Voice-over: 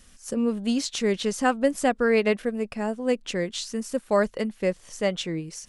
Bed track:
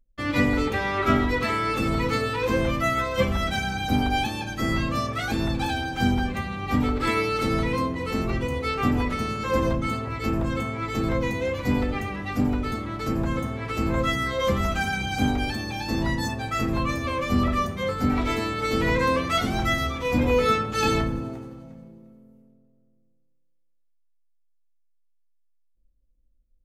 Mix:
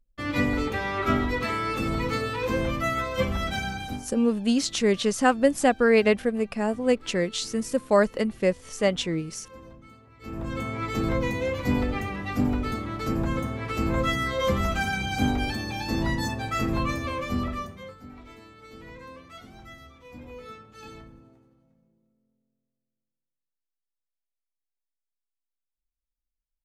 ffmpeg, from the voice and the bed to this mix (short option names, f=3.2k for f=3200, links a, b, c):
-filter_complex "[0:a]adelay=3800,volume=2dB[a];[1:a]volume=19.5dB,afade=t=out:st=3.69:d=0.37:silence=0.0944061,afade=t=in:st=10.17:d=0.59:silence=0.0749894,afade=t=out:st=16.82:d=1.19:silence=0.0891251[b];[a][b]amix=inputs=2:normalize=0"